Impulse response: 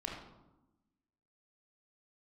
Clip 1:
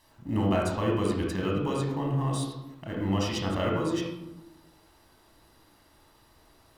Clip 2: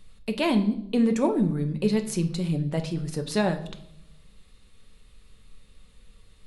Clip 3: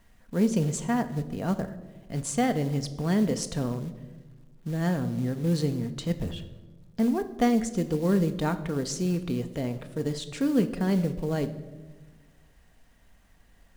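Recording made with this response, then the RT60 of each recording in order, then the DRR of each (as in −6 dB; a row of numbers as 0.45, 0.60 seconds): 1; 1.0, 0.70, 1.3 seconds; −1.5, 5.5, 8.0 decibels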